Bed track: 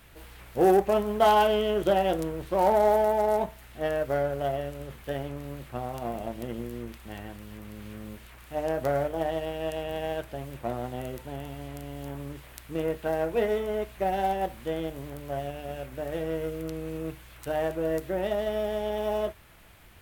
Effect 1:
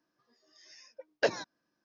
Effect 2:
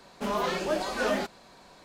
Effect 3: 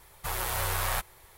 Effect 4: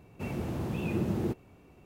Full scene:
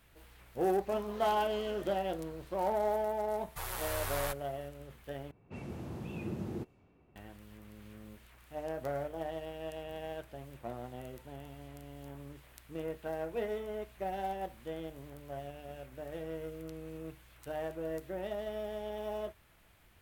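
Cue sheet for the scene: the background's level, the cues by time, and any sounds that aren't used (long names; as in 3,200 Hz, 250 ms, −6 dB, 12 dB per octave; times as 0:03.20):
bed track −10 dB
0:00.70: mix in 2 −10.5 dB + downward compressor 4 to 1, threshold −38 dBFS
0:03.32: mix in 3 −7.5 dB
0:05.31: overwrite with 4 −8.5 dB + low-pass that shuts in the quiet parts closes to 2,000 Hz, open at −30 dBFS
not used: 1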